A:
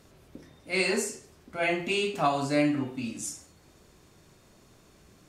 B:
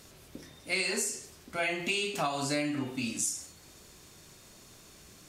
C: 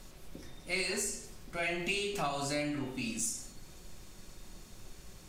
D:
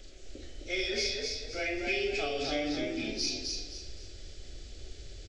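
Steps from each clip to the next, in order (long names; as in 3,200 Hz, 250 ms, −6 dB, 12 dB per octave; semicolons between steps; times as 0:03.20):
high-shelf EQ 2,300 Hz +10.5 dB; downward compressor 6 to 1, threshold −28 dBFS, peak gain reduction 10.5 dB
background noise brown −49 dBFS; in parallel at −3 dB: soft clipping −27.5 dBFS, distortion −14 dB; on the sum: convolution reverb RT60 0.75 s, pre-delay 5 ms, DRR 8.5 dB; level −7.5 dB
hearing-aid frequency compression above 2,100 Hz 1.5 to 1; phaser with its sweep stopped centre 410 Hz, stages 4; echo with shifted repeats 258 ms, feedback 34%, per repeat +32 Hz, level −3.5 dB; level +3.5 dB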